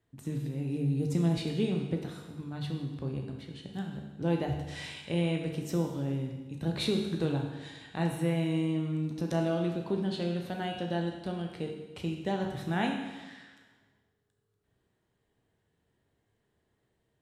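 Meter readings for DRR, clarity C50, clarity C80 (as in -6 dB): 1.5 dB, 4.5 dB, 6.5 dB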